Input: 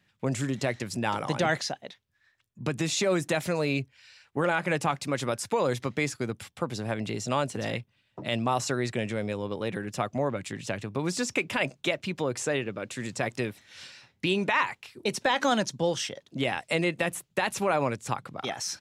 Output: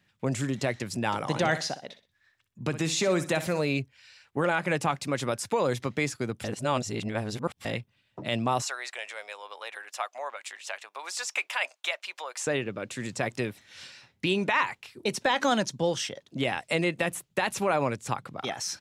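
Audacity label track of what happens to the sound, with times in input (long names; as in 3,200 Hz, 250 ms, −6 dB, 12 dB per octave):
1.240000	3.610000	repeating echo 62 ms, feedback 30%, level −13 dB
6.440000	7.650000	reverse
8.620000	12.470000	high-pass filter 730 Hz 24 dB per octave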